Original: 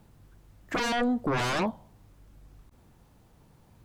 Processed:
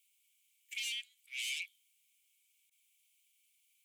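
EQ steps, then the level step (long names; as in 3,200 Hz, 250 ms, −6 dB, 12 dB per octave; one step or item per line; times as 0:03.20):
Chebyshev high-pass with heavy ripple 2,200 Hz, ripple 6 dB
parametric band 4,900 Hz −10 dB 1.7 octaves
+6.5 dB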